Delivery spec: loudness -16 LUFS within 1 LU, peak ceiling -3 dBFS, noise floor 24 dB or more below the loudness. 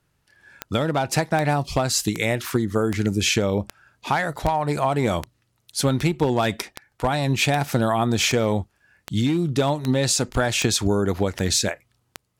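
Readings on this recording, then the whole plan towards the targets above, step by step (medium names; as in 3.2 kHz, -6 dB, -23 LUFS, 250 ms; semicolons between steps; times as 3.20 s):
clicks found 16; loudness -22.5 LUFS; peak level -7.0 dBFS; loudness target -16.0 LUFS
-> de-click; trim +6.5 dB; peak limiter -3 dBFS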